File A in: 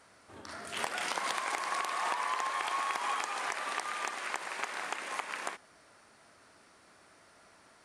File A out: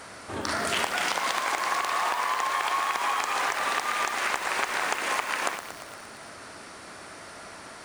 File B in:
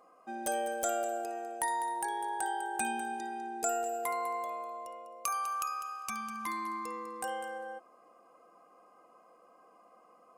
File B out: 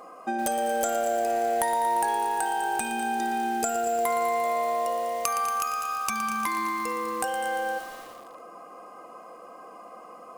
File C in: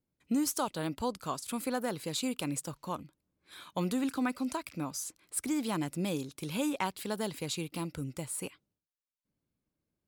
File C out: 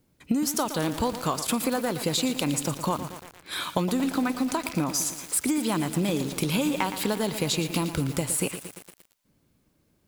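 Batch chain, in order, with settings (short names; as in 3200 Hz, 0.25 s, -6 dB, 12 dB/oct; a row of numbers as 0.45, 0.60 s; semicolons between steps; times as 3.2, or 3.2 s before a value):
dynamic EQ 9300 Hz, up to -5 dB, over -55 dBFS, Q 4.6; compressor 10:1, threshold -41 dBFS; lo-fi delay 0.116 s, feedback 80%, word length 9-bit, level -10 dB; match loudness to -27 LUFS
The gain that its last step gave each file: +17.0, +15.5, +18.0 dB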